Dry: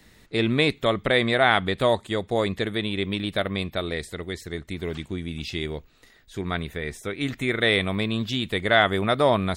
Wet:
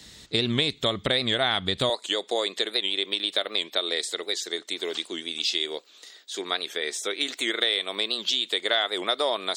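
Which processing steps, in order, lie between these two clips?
high-order bell 5.1 kHz +11.5 dB; compression 5:1, threshold -23 dBFS, peak gain reduction 12 dB; high-pass 42 Hz 24 dB/octave, from 1.90 s 350 Hz; de-esser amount 50%; warped record 78 rpm, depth 160 cents; trim +2 dB

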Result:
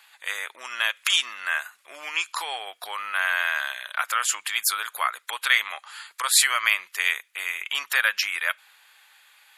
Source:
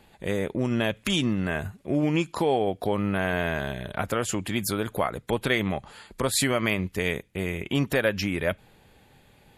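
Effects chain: Chebyshev high-pass 1.2 kHz, order 3; trim +8 dB

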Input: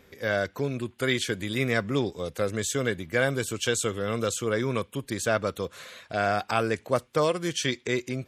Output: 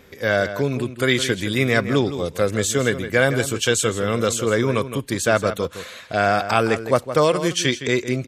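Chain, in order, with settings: echo from a far wall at 28 m, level -11 dB; trim +7 dB

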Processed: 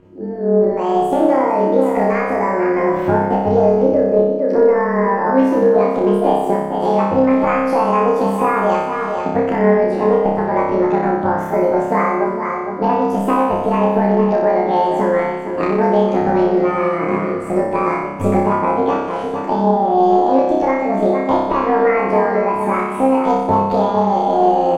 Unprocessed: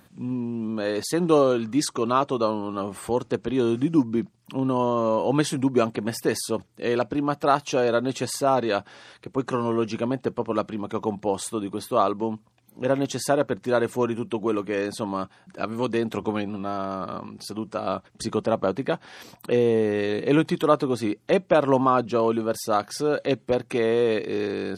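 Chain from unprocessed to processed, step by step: rotating-head pitch shifter +10 st; low-pass 12 kHz 12 dB/octave; peaking EQ 5.7 kHz -8 dB 2.4 oct; delay 455 ms -12.5 dB; compression 6:1, threshold -29 dBFS, peak gain reduction 13.5 dB; tilt EQ -4 dB/octave; on a send: flutter echo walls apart 5.2 m, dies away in 0.98 s; on the sum: level rider gain up to 10.5 dB; loudspeaker Doppler distortion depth 0.12 ms; trim +1 dB

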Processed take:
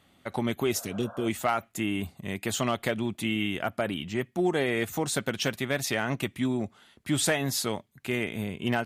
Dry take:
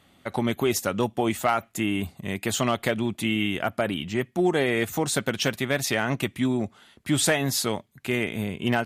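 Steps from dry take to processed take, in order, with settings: spectral replace 0.77–1.24 s, 490–1700 Hz both; trim -3.5 dB

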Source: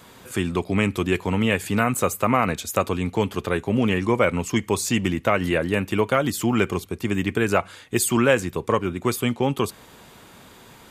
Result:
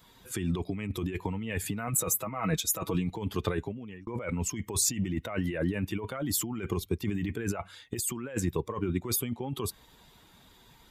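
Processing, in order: expander on every frequency bin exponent 1.5; dynamic bell 4.3 kHz, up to -5 dB, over -43 dBFS, Q 0.91; compressor with a negative ratio -32 dBFS, ratio -1; 1.87–3.10 s: comb 6.2 ms, depth 62%; 3.61–4.07 s: fade out

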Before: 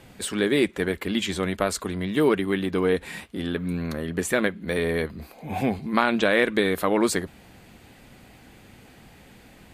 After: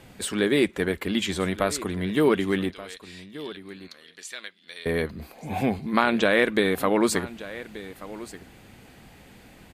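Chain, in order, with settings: 2.70–4.86 s: band-pass filter 4.5 kHz, Q 1.9; delay 1180 ms -16.5 dB

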